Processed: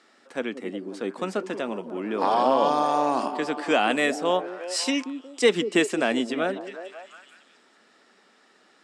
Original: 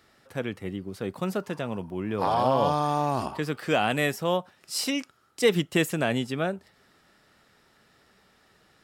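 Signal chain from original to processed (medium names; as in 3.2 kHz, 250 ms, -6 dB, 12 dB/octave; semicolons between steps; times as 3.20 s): elliptic band-pass 240–8400 Hz, stop band 50 dB; repeats whose band climbs or falls 181 ms, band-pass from 310 Hz, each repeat 0.7 oct, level -7 dB; trim +3 dB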